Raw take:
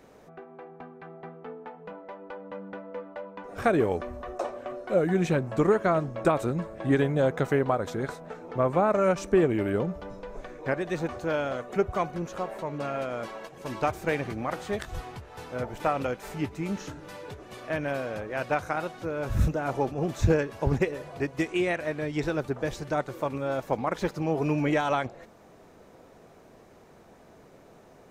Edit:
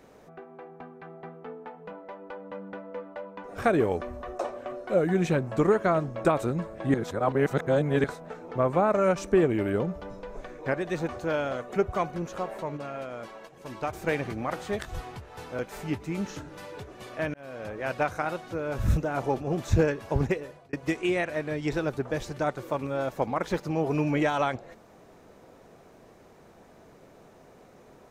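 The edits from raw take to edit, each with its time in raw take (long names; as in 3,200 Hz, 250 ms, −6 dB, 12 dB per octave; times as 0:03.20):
0:06.94–0:08.04: reverse
0:12.77–0:13.93: clip gain −5 dB
0:15.59–0:16.10: remove
0:17.85–0:18.28: fade in
0:20.57–0:21.24: fade out equal-power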